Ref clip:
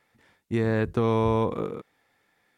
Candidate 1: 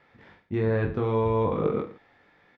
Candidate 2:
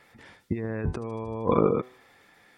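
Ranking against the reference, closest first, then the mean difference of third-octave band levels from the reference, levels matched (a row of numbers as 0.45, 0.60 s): 1, 2; 5.0, 8.5 dB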